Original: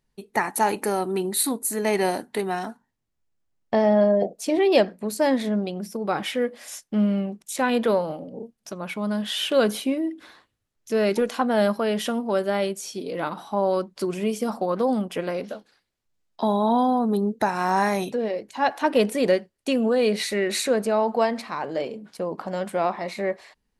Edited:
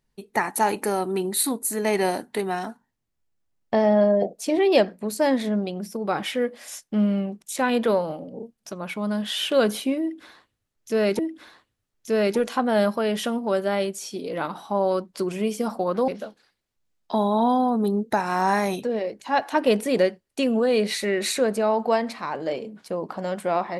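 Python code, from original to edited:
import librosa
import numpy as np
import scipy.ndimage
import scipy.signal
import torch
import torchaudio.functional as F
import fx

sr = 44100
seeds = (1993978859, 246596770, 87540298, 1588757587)

y = fx.edit(x, sr, fx.repeat(start_s=10.01, length_s=1.18, count=2),
    fx.cut(start_s=14.9, length_s=0.47), tone=tone)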